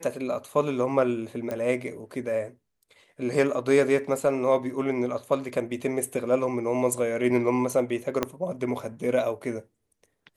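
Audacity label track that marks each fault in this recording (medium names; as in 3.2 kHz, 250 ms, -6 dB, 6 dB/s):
1.510000	1.510000	pop -19 dBFS
8.230000	8.230000	pop -10 dBFS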